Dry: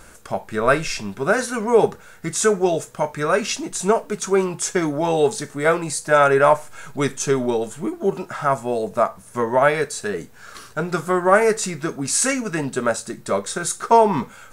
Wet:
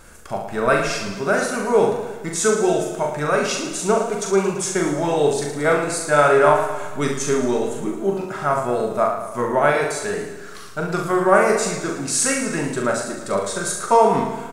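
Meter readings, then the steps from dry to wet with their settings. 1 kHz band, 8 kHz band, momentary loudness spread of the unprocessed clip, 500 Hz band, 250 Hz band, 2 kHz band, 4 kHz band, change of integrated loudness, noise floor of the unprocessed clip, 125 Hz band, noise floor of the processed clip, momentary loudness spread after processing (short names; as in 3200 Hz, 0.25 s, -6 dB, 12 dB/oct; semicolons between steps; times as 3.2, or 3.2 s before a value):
+0.5 dB, +0.5 dB, 11 LU, +0.5 dB, +0.5 dB, +0.5 dB, +0.5 dB, +0.5 dB, -45 dBFS, +0.5 dB, -35 dBFS, 10 LU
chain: on a send: early reflections 41 ms -4.5 dB, 68 ms -7.5 dB; on the sum: warbling echo 0.111 s, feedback 56%, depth 66 cents, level -9 dB; gain -2 dB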